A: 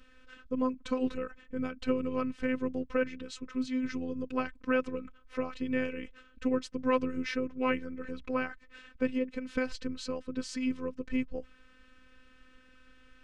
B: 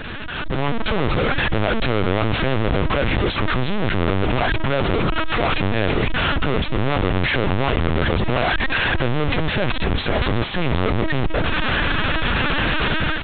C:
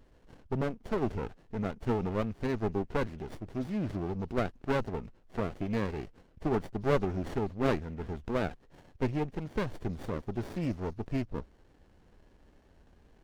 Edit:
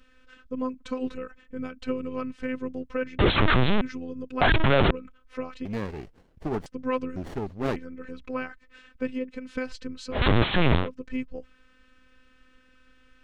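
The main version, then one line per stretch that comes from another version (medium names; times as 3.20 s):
A
3.19–3.81 s: from B
4.41–4.91 s: from B
5.65–6.66 s: from C
7.16–7.76 s: from C
10.19–10.81 s: from B, crossfade 0.16 s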